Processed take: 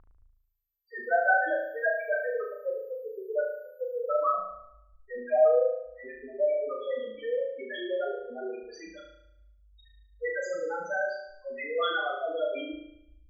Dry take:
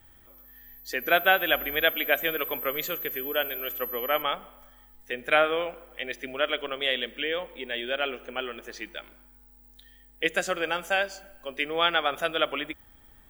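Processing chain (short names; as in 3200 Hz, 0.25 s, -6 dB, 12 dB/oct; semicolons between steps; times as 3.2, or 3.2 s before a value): loudest bins only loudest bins 2; upward compressor, threshold -53 dBFS; low-pass sweep 1200 Hz -> 5800 Hz, 6.96–8.56; flutter echo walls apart 6.3 m, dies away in 0.78 s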